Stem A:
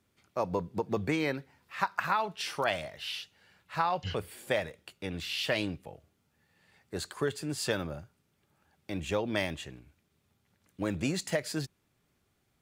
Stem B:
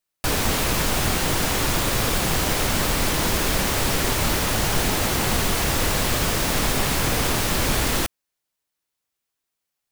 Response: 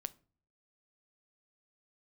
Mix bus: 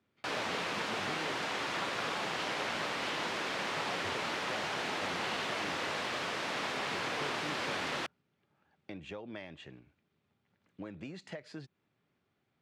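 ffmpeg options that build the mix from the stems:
-filter_complex "[0:a]acompressor=threshold=-38dB:ratio=6,volume=-2.5dB[link_01];[1:a]highpass=frequency=620:poles=1,volume=-8dB[link_02];[link_01][link_02]amix=inputs=2:normalize=0,highpass=120,lowpass=3400"

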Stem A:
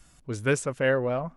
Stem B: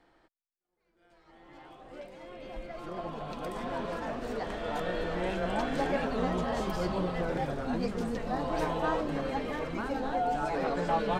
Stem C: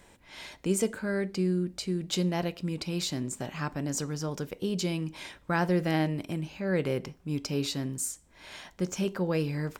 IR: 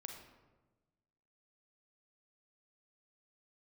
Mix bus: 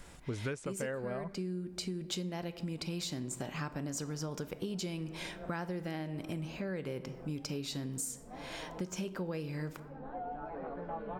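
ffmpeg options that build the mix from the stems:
-filter_complex "[0:a]highshelf=frequency=5800:gain=-7.5,volume=2.5dB[link_01];[1:a]lowpass=1400,volume=-12dB,asplit=2[link_02][link_03];[link_03]volume=-11dB[link_04];[2:a]volume=-2.5dB,asplit=3[link_05][link_06][link_07];[link_06]volume=-5dB[link_08];[link_07]apad=whole_len=493872[link_09];[link_02][link_09]sidechaincompress=threshold=-51dB:ratio=8:attack=16:release=312[link_10];[3:a]atrim=start_sample=2205[link_11];[link_04][link_08]amix=inputs=2:normalize=0[link_12];[link_12][link_11]afir=irnorm=-1:irlink=0[link_13];[link_01][link_10][link_05][link_13]amix=inputs=4:normalize=0,acompressor=threshold=-34dB:ratio=16"

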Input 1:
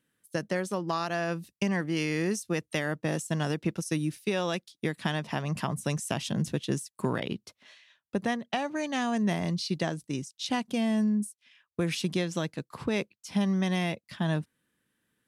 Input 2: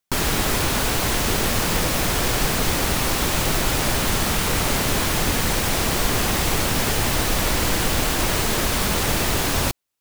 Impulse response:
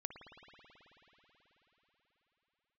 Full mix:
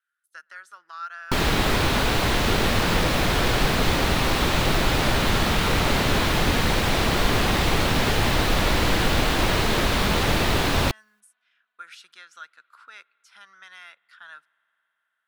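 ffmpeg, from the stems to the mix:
-filter_complex "[0:a]highpass=frequency=1400:width_type=q:width=15,volume=-15.5dB,asplit=2[link_01][link_02];[link_02]volume=-16.5dB[link_03];[1:a]adelay=1200,volume=1dB[link_04];[2:a]atrim=start_sample=2205[link_05];[link_03][link_05]afir=irnorm=-1:irlink=0[link_06];[link_01][link_04][link_06]amix=inputs=3:normalize=0,acrossover=split=4300[link_07][link_08];[link_08]acompressor=threshold=-36dB:ratio=4:attack=1:release=60[link_09];[link_07][link_09]amix=inputs=2:normalize=0,equalizer=frequency=3900:width=2.7:gain=3"

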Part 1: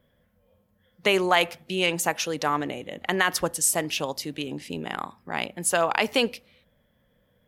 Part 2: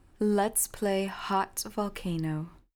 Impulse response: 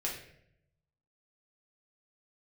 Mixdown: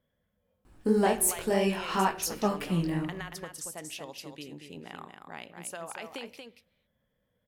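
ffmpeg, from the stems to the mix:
-filter_complex "[0:a]acompressor=threshold=-25dB:ratio=6,volume=-12.5dB,asplit=3[link_01][link_02][link_03];[link_02]volume=-18.5dB[link_04];[link_03]volume=-5.5dB[link_05];[1:a]flanger=delay=16:depth=6.2:speed=2.9,adelay=650,volume=2.5dB,asplit=2[link_06][link_07];[link_07]volume=-9dB[link_08];[2:a]atrim=start_sample=2205[link_09];[link_04][link_08]amix=inputs=2:normalize=0[link_10];[link_10][link_09]afir=irnorm=-1:irlink=0[link_11];[link_05]aecho=0:1:232:1[link_12];[link_01][link_06][link_11][link_12]amix=inputs=4:normalize=0"

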